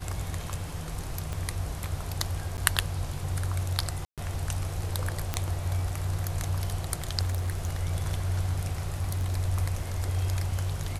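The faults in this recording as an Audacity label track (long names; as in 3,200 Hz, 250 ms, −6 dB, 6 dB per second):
1.330000	1.330000	click −20 dBFS
2.570000	2.580000	drop-out 9.8 ms
4.050000	4.180000	drop-out 127 ms
5.340000	5.340000	click −12 dBFS
7.260000	7.690000	clipping −25 dBFS
8.810000	9.360000	clipping −24 dBFS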